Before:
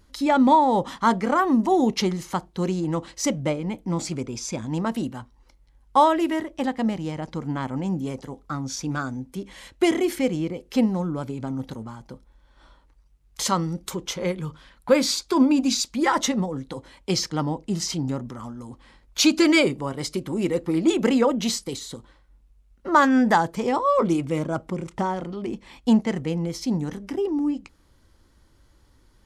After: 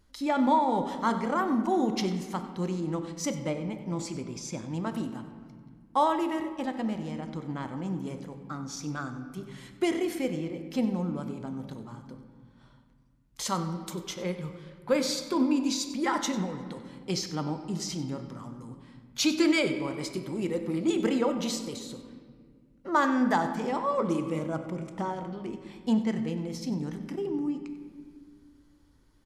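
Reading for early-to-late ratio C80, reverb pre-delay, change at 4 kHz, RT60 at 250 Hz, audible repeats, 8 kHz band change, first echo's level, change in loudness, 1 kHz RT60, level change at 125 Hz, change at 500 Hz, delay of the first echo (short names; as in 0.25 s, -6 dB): 9.5 dB, 3 ms, -7.0 dB, 2.8 s, 1, -7.0 dB, -15.5 dB, -6.5 dB, 1.8 s, -6.0 dB, -6.5 dB, 95 ms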